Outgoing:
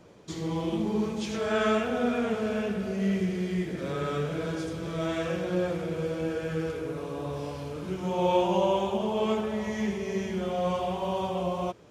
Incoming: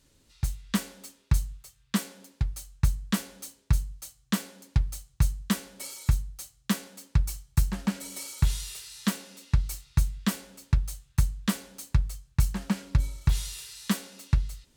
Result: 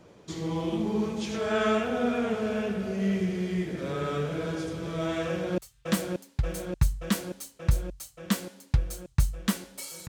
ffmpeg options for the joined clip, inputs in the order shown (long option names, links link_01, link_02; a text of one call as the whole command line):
ffmpeg -i cue0.wav -i cue1.wav -filter_complex "[0:a]apad=whole_dur=10.08,atrim=end=10.08,atrim=end=5.582[link_01];[1:a]atrim=start=1.598:end=6.1[link_02];[link_01][link_02]acrossfade=duration=0.004:curve1=hsin:curve2=hsin,asplit=2[link_03][link_04];[link_04]afade=type=in:start_time=5.27:duration=0.01,afade=type=out:start_time=5.58:duration=0.01,aecho=0:1:580|1160|1740|2320|2900|3480|4060|4640|5220|5800|6380|6960:0.707946|0.530959|0.39822|0.298665|0.223998|0.167999|0.125999|0.0944994|0.0708745|0.0531559|0.0398669|0.0299002[link_05];[link_03][link_05]amix=inputs=2:normalize=0" out.wav